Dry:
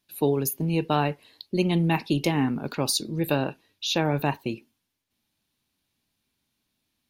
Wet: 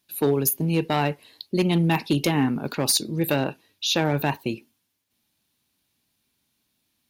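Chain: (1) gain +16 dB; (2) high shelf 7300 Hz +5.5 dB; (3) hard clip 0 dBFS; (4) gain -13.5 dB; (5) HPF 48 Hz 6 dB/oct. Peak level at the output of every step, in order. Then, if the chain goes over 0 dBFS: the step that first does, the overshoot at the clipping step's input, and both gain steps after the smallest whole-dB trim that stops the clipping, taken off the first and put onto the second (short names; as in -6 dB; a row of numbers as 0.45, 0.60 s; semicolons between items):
+7.5, +7.5, 0.0, -13.5, -12.0 dBFS; step 1, 7.5 dB; step 1 +8 dB, step 4 -5.5 dB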